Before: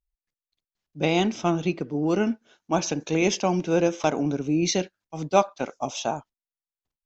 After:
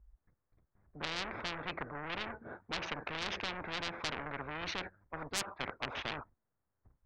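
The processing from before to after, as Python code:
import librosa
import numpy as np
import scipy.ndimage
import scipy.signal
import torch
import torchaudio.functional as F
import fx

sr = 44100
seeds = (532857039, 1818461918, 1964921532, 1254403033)

y = fx.wiener(x, sr, points=15)
y = scipy.signal.sosfilt(scipy.signal.butter(4, 2000.0, 'lowpass', fs=sr, output='sos'), y)
y = fx.peak_eq(y, sr, hz=74.0, db=13.5, octaves=2.0)
y = 10.0 ** (-21.5 / 20.0) * np.tanh(y / 10.0 ** (-21.5 / 20.0))
y = fx.spectral_comp(y, sr, ratio=10.0)
y = y * librosa.db_to_amplitude(5.5)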